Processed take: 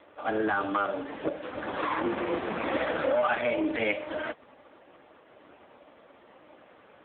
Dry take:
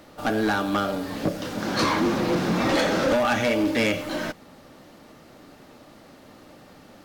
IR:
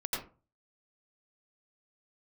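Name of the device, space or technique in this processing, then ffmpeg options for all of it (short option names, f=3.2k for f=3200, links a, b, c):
telephone: -af "highpass=380,lowpass=3.4k,asoftclip=type=tanh:threshold=-16.5dB,volume=1dB" -ar 8000 -c:a libopencore_amrnb -b:a 4750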